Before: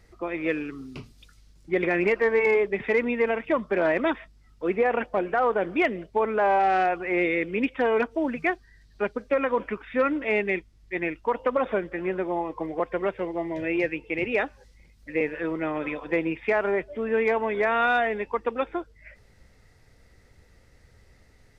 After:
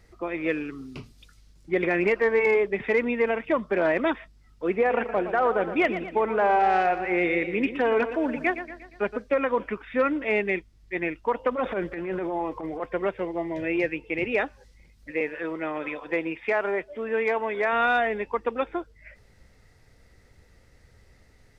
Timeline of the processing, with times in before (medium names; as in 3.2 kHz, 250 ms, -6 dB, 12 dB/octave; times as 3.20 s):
4.74–9.17 s: modulated delay 118 ms, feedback 50%, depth 85 cents, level -11 dB
11.51–12.86 s: transient shaper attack -11 dB, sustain +5 dB
15.11–17.73 s: bass shelf 220 Hz -10.5 dB